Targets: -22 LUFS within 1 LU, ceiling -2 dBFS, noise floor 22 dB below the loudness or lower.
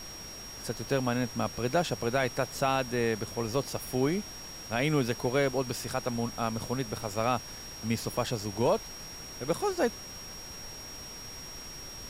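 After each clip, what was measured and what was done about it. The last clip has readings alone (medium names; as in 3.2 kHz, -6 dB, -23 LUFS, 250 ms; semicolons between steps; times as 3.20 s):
steady tone 5.6 kHz; tone level -43 dBFS; noise floor -44 dBFS; noise floor target -54 dBFS; loudness -32.0 LUFS; peak level -15.0 dBFS; loudness target -22.0 LUFS
-> band-stop 5.6 kHz, Q 30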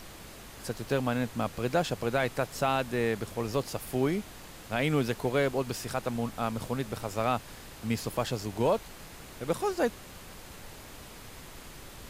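steady tone not found; noise floor -48 dBFS; noise floor target -53 dBFS
-> noise print and reduce 6 dB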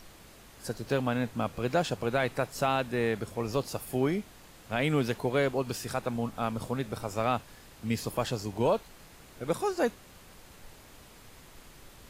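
noise floor -53 dBFS; loudness -31.0 LUFS; peak level -15.5 dBFS; loudness target -22.0 LUFS
-> trim +9 dB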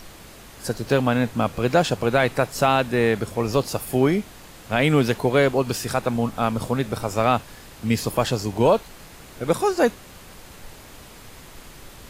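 loudness -22.0 LUFS; peak level -6.5 dBFS; noise floor -44 dBFS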